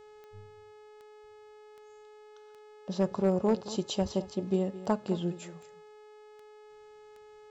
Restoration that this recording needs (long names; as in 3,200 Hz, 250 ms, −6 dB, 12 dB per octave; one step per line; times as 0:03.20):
clipped peaks rebuilt −18 dBFS
click removal
hum removal 424.2 Hz, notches 20
echo removal 218 ms −15.5 dB